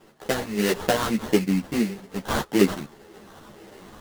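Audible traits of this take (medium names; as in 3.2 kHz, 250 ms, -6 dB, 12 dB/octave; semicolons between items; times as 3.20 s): phasing stages 2, 1.7 Hz, lowest notch 520–4100 Hz; aliases and images of a low sample rate 2.4 kHz, jitter 20%; random-step tremolo; a shimmering, thickened sound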